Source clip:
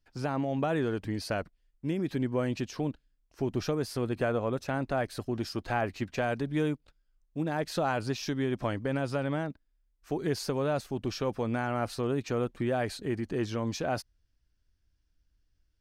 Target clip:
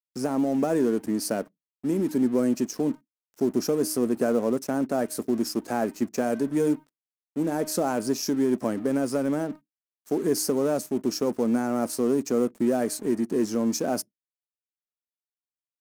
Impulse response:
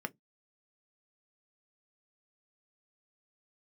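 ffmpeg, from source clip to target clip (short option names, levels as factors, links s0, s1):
-filter_complex "[0:a]highpass=f=190:w=0.5412,highpass=f=190:w=1.3066,tiltshelf=f=730:g=9.5,bandreject=f=309.2:t=h:w=4,bandreject=f=618.4:t=h:w=4,bandreject=f=927.6:t=h:w=4,bandreject=f=1236.8:t=h:w=4,bandreject=f=1546:t=h:w=4,bandreject=f=1855.2:t=h:w=4,bandreject=f=2164.4:t=h:w=4,bandreject=f=2473.6:t=h:w=4,bandreject=f=2782.8:t=h:w=4,bandreject=f=3092:t=h:w=4,bandreject=f=3401.2:t=h:w=4,asplit=2[s0][s1];[s1]asoftclip=type=hard:threshold=0.0398,volume=0.398[s2];[s0][s2]amix=inputs=2:normalize=0,aexciter=amount=12.6:drive=3.1:freq=5200,aeval=exprs='sgn(val(0))*max(abs(val(0))-0.00473,0)':c=same,asplit=2[s3][s4];[1:a]atrim=start_sample=2205[s5];[s4][s5]afir=irnorm=-1:irlink=0,volume=0.224[s6];[s3][s6]amix=inputs=2:normalize=0"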